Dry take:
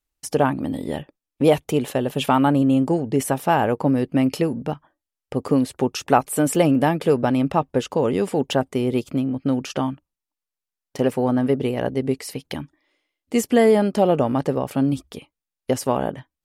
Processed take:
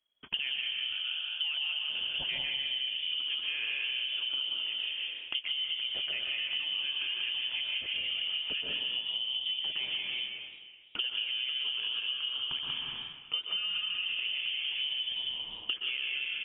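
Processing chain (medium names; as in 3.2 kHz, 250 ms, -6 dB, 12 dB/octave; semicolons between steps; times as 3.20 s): vibrato 1.7 Hz 34 cents; in parallel at -3 dB: saturation -18 dBFS, distortion -9 dB; on the sum: frequency inversion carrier 3.3 kHz; on a send: delay 189 ms -6 dB; on the sum: peak limiter -9 dBFS, peak gain reduction 8.5 dB; plate-style reverb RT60 1.1 s, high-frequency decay 0.95×, pre-delay 110 ms, DRR -0.5 dB; dynamic bell 2.6 kHz, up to +6 dB, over -28 dBFS, Q 0.75; 0.94–1.90 s: steep high-pass 630 Hz 48 dB/octave; compression 12:1, threshold -26 dBFS, peak gain reduction 22.5 dB; modulated delay 130 ms, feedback 77%, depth 143 cents, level -21 dB; trim -5.5 dB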